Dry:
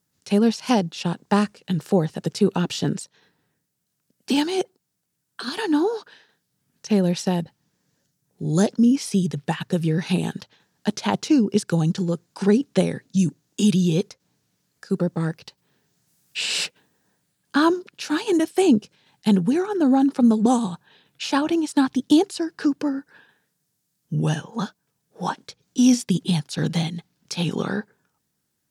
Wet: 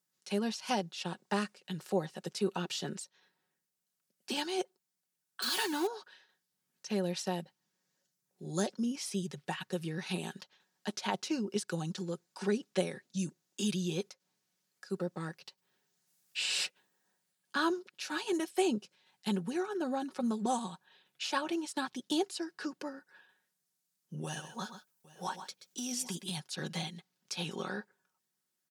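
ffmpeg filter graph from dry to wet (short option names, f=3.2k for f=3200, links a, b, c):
-filter_complex "[0:a]asettb=1/sr,asplit=3[a][b][c];[a]atrim=end=5.424[d];[b]atrim=start=5.42:end=5.87,asetpts=PTS-STARTPTS,afade=t=in:d=0.004:c=qsin,afade=t=out:st=0.446:d=0.004:c=qsin,aeval=exprs='val(0)+0.5*0.0376*sgn(val(0))':c=same,highshelf=f=4k:g=8.5[e];[c]atrim=start=5.866[f];[d][e]acrossfade=d=0.004:c1=hsin:c2=qsin[g];[g][f]acrossfade=d=0.004:c1=qsin:c2=hsin,asettb=1/sr,asplit=3[h][i][j];[h]atrim=end=24.244[k];[i]atrim=start=24.24:end=26.37,asetpts=PTS-STARTPTS,afade=t=in:d=0.004:c=qsin,afade=t=out:st=2.126:d=0.004:c=qsin,highshelf=f=8.5k:g=11.5,acompressor=threshold=-21dB:ratio=3:attack=3.2:release=140:knee=1:detection=peak,aecho=1:1:128|802:0.299|0.1,atrim=end_sample=93933[l];[j]atrim=start=26.366[m];[k][l]acrossfade=d=0.004:c1=hsin:c2=qsin[n];[n][m]acrossfade=d=0.004:c1=qsin:c2=hsin,highpass=f=570:p=1,aecho=1:1:5.4:0.5,volume=-9dB"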